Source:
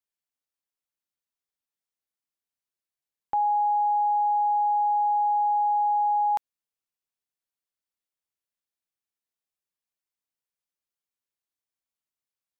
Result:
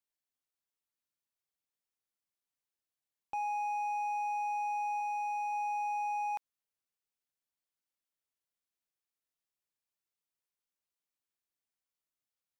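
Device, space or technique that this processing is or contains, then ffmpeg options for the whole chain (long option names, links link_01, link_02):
limiter into clipper: -filter_complex "[0:a]alimiter=level_in=2dB:limit=-24dB:level=0:latency=1,volume=-2dB,asoftclip=type=hard:threshold=-30.5dB,asettb=1/sr,asplit=3[link_01][link_02][link_03];[link_01]atrim=end=5.004[link_04];[link_02]atrim=start=5:end=5.53,asetpts=PTS-STARTPTS,afade=type=in:duration=0.004:curve=qsin,afade=type=out:start_time=0.526:duration=0.004:curve=qsin,bandreject=frequency=910:width=12[link_05];[link_03]atrim=start=5.526[link_06];[link_04][link_05]acrossfade=duration=0.004:curve1=hsin:curve2=qsin[link_07];[link_07][link_06]acrossfade=duration=0.004:curve1=qsin:curve2=hsin,volume=-2.5dB"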